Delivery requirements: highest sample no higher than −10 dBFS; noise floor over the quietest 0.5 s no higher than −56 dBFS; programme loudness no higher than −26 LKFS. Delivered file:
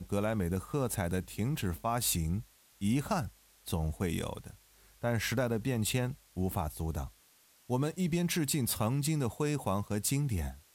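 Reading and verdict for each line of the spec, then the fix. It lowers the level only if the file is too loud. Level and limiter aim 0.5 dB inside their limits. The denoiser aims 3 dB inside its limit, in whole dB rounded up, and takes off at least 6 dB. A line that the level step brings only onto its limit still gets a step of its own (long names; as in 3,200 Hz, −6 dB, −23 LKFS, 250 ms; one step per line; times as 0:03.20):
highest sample −17.0 dBFS: in spec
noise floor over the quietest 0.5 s −64 dBFS: in spec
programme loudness −33.5 LKFS: in spec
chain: no processing needed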